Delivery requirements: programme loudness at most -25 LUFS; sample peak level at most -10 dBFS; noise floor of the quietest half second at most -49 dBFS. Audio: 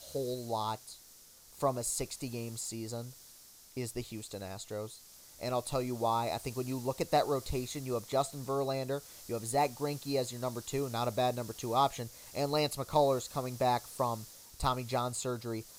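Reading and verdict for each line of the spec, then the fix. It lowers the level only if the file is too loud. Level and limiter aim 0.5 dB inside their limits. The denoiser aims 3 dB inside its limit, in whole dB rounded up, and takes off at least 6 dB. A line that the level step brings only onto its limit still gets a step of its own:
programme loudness -34.5 LUFS: pass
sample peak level -13.5 dBFS: pass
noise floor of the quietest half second -57 dBFS: pass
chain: none needed

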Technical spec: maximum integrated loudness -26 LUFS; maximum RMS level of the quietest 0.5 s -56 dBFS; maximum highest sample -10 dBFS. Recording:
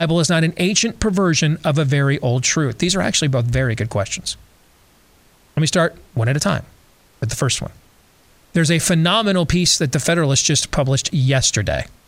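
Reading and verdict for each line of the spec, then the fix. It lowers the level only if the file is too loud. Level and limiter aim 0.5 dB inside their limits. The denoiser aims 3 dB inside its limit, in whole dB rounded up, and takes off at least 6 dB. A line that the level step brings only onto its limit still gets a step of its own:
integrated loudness -17.5 LUFS: fail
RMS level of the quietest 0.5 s -53 dBFS: fail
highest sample -3.5 dBFS: fail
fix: trim -9 dB

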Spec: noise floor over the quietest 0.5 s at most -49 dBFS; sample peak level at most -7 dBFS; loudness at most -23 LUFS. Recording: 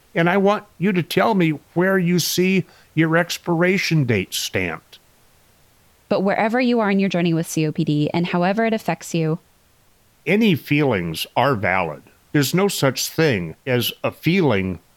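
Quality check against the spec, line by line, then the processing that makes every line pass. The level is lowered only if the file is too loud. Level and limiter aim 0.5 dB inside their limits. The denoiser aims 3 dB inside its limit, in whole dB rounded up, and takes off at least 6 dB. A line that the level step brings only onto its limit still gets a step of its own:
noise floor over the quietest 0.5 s -56 dBFS: pass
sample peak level -3.5 dBFS: fail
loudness -19.5 LUFS: fail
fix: trim -4 dB

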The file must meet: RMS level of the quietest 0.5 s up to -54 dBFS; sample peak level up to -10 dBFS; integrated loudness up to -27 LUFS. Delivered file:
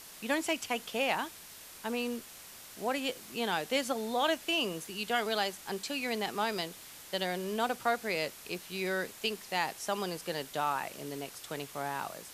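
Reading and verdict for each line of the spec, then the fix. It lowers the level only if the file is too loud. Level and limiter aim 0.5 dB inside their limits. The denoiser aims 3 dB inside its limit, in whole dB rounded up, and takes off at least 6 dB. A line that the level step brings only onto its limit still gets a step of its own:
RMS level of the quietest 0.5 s -50 dBFS: fail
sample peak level -15.0 dBFS: pass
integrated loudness -34.0 LUFS: pass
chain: noise reduction 7 dB, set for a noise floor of -50 dBFS

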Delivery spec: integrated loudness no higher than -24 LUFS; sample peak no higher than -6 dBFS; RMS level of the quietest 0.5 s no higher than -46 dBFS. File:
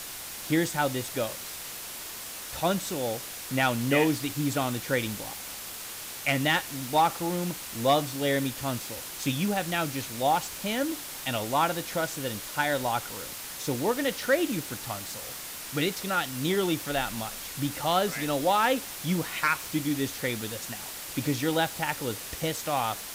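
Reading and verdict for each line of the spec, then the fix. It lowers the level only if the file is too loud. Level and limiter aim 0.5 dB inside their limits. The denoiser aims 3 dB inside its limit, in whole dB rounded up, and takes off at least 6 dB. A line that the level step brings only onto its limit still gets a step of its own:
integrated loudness -29.0 LUFS: pass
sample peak -10.5 dBFS: pass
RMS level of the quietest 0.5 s -39 dBFS: fail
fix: noise reduction 10 dB, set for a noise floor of -39 dBFS

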